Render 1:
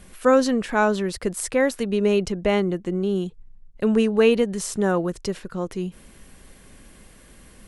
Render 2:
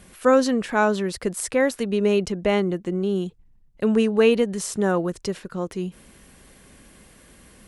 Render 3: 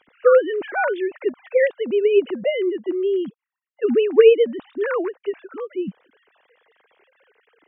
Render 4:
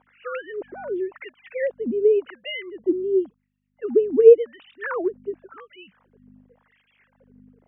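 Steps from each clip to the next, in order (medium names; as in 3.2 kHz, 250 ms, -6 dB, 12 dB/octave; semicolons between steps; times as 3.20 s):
high-pass 58 Hz 6 dB/octave
formants replaced by sine waves; trim +2.5 dB
hum 50 Hz, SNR 22 dB; wah-wah 0.91 Hz 240–2900 Hz, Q 3.4; trim +5 dB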